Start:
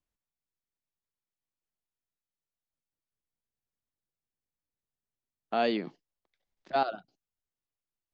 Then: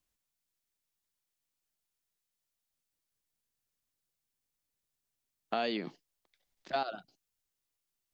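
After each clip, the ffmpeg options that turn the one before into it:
ffmpeg -i in.wav -af "highshelf=frequency=2500:gain=8,acompressor=threshold=-32dB:ratio=4,volume=1.5dB" out.wav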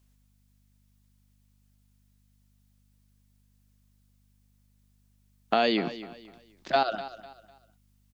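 ffmpeg -i in.wav -af "aeval=exprs='val(0)+0.000224*(sin(2*PI*50*n/s)+sin(2*PI*2*50*n/s)/2+sin(2*PI*3*50*n/s)/3+sin(2*PI*4*50*n/s)/4+sin(2*PI*5*50*n/s)/5)':channel_layout=same,aecho=1:1:250|500|750:0.178|0.0569|0.0182,volume=9dB" out.wav

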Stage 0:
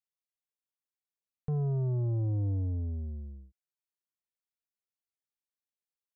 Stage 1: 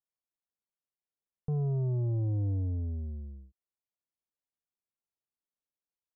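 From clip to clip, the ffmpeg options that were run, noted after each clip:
ffmpeg -i in.wav -af "lowpass=1000" out.wav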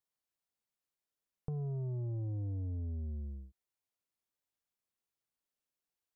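ffmpeg -i in.wav -af "acompressor=threshold=-40dB:ratio=5,volume=2dB" out.wav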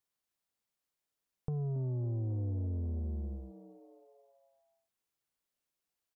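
ffmpeg -i in.wav -filter_complex "[0:a]asplit=6[link_01][link_02][link_03][link_04][link_05][link_06];[link_02]adelay=274,afreqshift=120,volume=-17dB[link_07];[link_03]adelay=548,afreqshift=240,volume=-22dB[link_08];[link_04]adelay=822,afreqshift=360,volume=-27.1dB[link_09];[link_05]adelay=1096,afreqshift=480,volume=-32.1dB[link_10];[link_06]adelay=1370,afreqshift=600,volume=-37.1dB[link_11];[link_01][link_07][link_08][link_09][link_10][link_11]amix=inputs=6:normalize=0,volume=2.5dB" out.wav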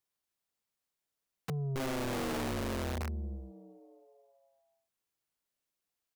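ffmpeg -i in.wav -af "aeval=exprs='(mod(42.2*val(0)+1,2)-1)/42.2':channel_layout=same" out.wav

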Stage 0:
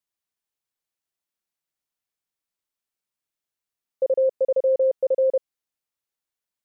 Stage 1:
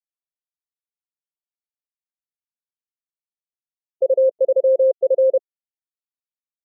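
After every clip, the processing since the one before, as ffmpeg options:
ffmpeg -i in.wav -af "afftfilt=real='re*gte(hypot(re,im),0.0708)':imag='im*gte(hypot(re,im),0.0708)':win_size=1024:overlap=0.75,volume=4.5dB" out.wav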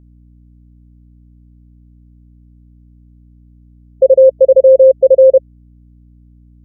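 ffmpeg -i in.wav -af "equalizer=frequency=540:width=4.4:gain=4.5,aeval=exprs='val(0)+0.00398*(sin(2*PI*60*n/s)+sin(2*PI*2*60*n/s)/2+sin(2*PI*3*60*n/s)/3+sin(2*PI*4*60*n/s)/4+sin(2*PI*5*60*n/s)/5)':channel_layout=same,volume=5dB" out.wav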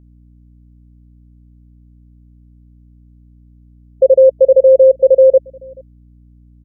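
ffmpeg -i in.wav -filter_complex "[0:a]asplit=2[link_01][link_02];[link_02]adelay=431.5,volume=-27dB,highshelf=frequency=4000:gain=-9.71[link_03];[link_01][link_03]amix=inputs=2:normalize=0,volume=-1dB" out.wav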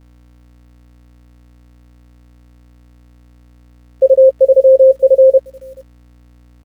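ffmpeg -i in.wav -filter_complex "[0:a]acrusher=bits=9:dc=4:mix=0:aa=0.000001,asplit=2[link_01][link_02];[link_02]adelay=13,volume=-11.5dB[link_03];[link_01][link_03]amix=inputs=2:normalize=0,volume=-1dB" out.wav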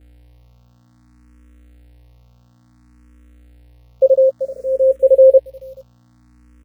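ffmpeg -i in.wav -filter_complex "[0:a]asplit=2[link_01][link_02];[link_02]afreqshift=0.58[link_03];[link_01][link_03]amix=inputs=2:normalize=1" out.wav

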